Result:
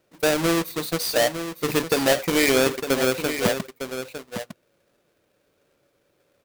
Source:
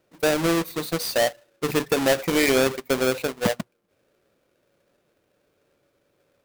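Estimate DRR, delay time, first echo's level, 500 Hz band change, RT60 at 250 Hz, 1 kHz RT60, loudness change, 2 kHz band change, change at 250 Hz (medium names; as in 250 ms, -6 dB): no reverb, 906 ms, -9.5 dB, +0.5 dB, no reverb, no reverb, +0.5 dB, +1.5 dB, +0.5 dB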